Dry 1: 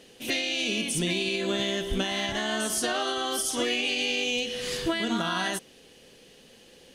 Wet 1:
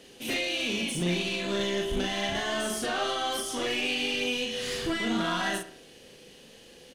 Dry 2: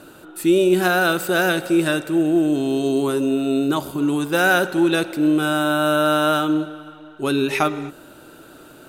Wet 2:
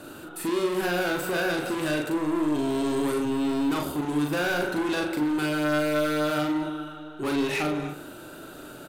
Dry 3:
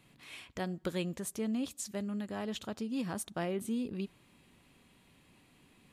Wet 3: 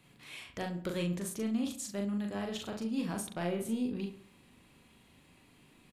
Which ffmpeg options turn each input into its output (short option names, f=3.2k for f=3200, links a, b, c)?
-filter_complex "[0:a]acrossover=split=520|3300[a][b][c];[a]acompressor=threshold=-20dB:ratio=4[d];[b]acompressor=threshold=-22dB:ratio=4[e];[c]acompressor=threshold=-37dB:ratio=4[f];[d][e][f]amix=inputs=3:normalize=0,asoftclip=type=tanh:threshold=-25dB,asplit=2[g][h];[h]adelay=40,volume=-3.5dB[i];[g][i]amix=inputs=2:normalize=0,asplit=2[j][k];[k]adelay=68,lowpass=f=3k:p=1,volume=-12dB,asplit=2[l][m];[m]adelay=68,lowpass=f=3k:p=1,volume=0.49,asplit=2[n][o];[o]adelay=68,lowpass=f=3k:p=1,volume=0.49,asplit=2[p][q];[q]adelay=68,lowpass=f=3k:p=1,volume=0.49,asplit=2[r][s];[s]adelay=68,lowpass=f=3k:p=1,volume=0.49[t];[j][l][n][p][r][t]amix=inputs=6:normalize=0"